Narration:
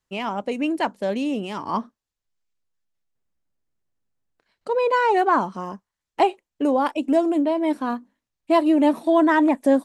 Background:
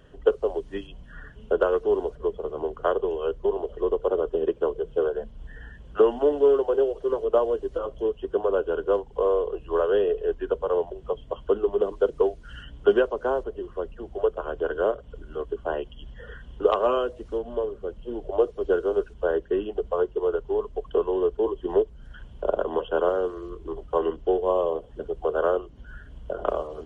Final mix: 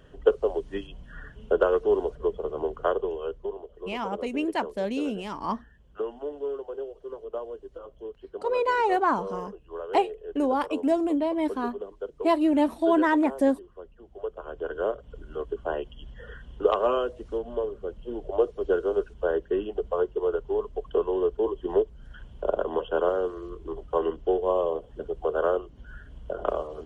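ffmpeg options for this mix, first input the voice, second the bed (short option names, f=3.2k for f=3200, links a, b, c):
-filter_complex "[0:a]adelay=3750,volume=-4.5dB[a];[1:a]volume=11.5dB,afade=t=out:st=2.69:d=0.97:silence=0.223872,afade=t=in:st=14.08:d=1.16:silence=0.266073[b];[a][b]amix=inputs=2:normalize=0"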